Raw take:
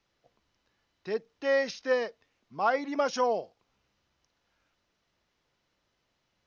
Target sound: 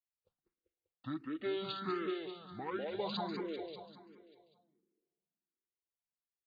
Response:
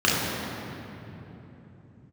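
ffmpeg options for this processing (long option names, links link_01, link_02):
-filter_complex "[0:a]agate=range=-33dB:threshold=-56dB:ratio=3:detection=peak,acrossover=split=2500[link_01][link_02];[link_01]acompressor=threshold=-34dB:ratio=4[link_03];[link_03][link_02]amix=inputs=2:normalize=0,asetrate=31183,aresample=44100,atempo=1.41421,aecho=1:1:196|392|588|784|980|1176|1372:0.708|0.375|0.199|0.105|0.0559|0.0296|0.0157,asplit=2[link_04][link_05];[1:a]atrim=start_sample=2205,asetrate=70560,aresample=44100[link_06];[link_05][link_06]afir=irnorm=-1:irlink=0,volume=-41.5dB[link_07];[link_04][link_07]amix=inputs=2:normalize=0,asplit=2[link_08][link_09];[link_09]afreqshift=1.4[link_10];[link_08][link_10]amix=inputs=2:normalize=1,volume=-1dB"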